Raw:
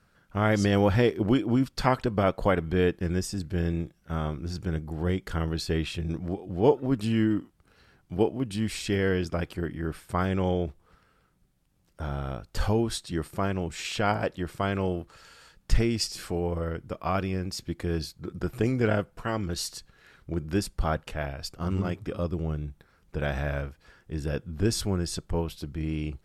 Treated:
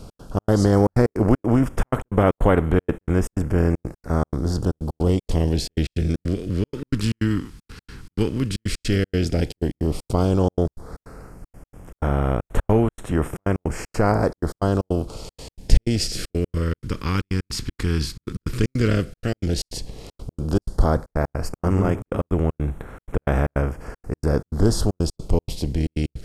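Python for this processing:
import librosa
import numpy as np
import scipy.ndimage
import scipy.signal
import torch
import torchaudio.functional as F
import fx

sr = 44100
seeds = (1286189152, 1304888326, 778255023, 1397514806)

y = fx.bin_compress(x, sr, power=0.6)
y = fx.low_shelf(y, sr, hz=91.0, db=5.5)
y = fx.step_gate(y, sr, bpm=156, pattern='x.xx.xxxx.', floor_db=-60.0, edge_ms=4.5)
y = fx.phaser_stages(y, sr, stages=2, low_hz=630.0, high_hz=4800.0, hz=0.099, feedback_pct=0)
y = fx.doppler_dist(y, sr, depth_ms=0.16)
y = y * 10.0 ** (3.0 / 20.0)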